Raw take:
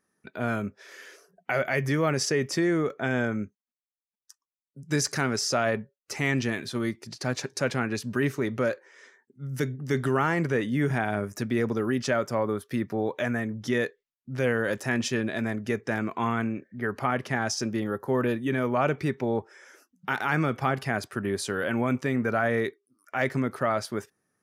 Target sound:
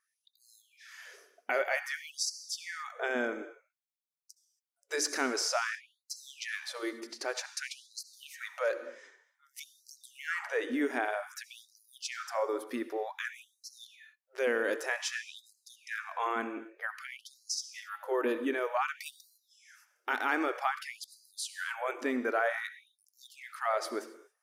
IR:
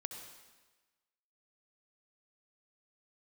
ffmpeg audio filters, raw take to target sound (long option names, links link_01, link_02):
-filter_complex "[0:a]asettb=1/sr,asplit=3[link_01][link_02][link_03];[link_01]atrim=end=18.984[link_04];[link_02]atrim=start=18.98:end=19.38,asetpts=PTS-STARTPTS,afade=type=in:duration=0.004:curve=qsin,afade=type=out:start_time=0.396:duration=0.004:curve=qsin,aemphasis=mode=production:type=50kf[link_05];[link_03]atrim=start=19.376[link_06];[link_04][link_05]acrossfade=duration=0.004:curve1=hsin:curve2=qsin[link_07];[link_07][link_06]acrossfade=duration=0.004:curve1=qsin:curve2=hsin,asplit=2[link_08][link_09];[1:a]atrim=start_sample=2205,afade=type=out:start_time=0.33:duration=0.01,atrim=end_sample=14994,asetrate=43659,aresample=44100[link_10];[link_09][link_10]afir=irnorm=-1:irlink=0,volume=0.5dB[link_11];[link_08][link_11]amix=inputs=2:normalize=0,afftfilt=real='re*gte(b*sr/1024,220*pow(4000/220,0.5+0.5*sin(2*PI*0.53*pts/sr)))':imag='im*gte(b*sr/1024,220*pow(4000/220,0.5+0.5*sin(2*PI*0.53*pts/sr)))':win_size=1024:overlap=0.75,volume=-8dB"